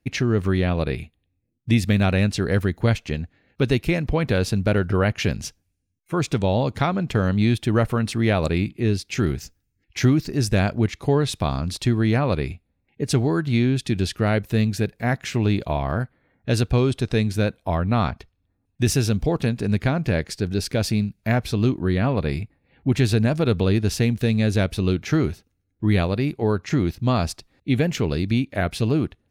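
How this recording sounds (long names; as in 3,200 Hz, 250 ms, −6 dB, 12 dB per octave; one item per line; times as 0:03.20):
background noise floor −72 dBFS
spectral slope −6.5 dB per octave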